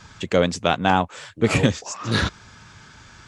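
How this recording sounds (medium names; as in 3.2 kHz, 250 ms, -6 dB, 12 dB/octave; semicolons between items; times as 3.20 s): noise floor -48 dBFS; spectral tilt -5.0 dB/octave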